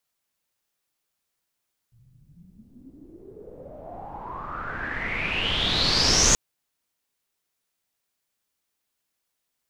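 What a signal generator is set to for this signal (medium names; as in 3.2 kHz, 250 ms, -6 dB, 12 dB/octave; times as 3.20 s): swept filtered noise pink, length 4.43 s lowpass, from 110 Hz, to 6.7 kHz, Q 8.6, exponential, gain ramp +39 dB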